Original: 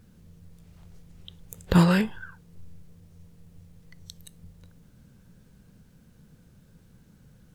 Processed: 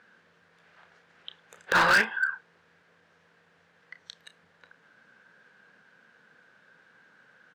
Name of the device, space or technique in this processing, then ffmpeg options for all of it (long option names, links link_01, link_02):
megaphone: -filter_complex "[0:a]highpass=690,lowpass=3000,equalizer=frequency=1600:width_type=o:width=0.47:gain=11,asoftclip=type=hard:threshold=-24dB,asplit=2[link_01][link_02];[link_02]adelay=31,volume=-12dB[link_03];[link_01][link_03]amix=inputs=2:normalize=0,volume=7dB"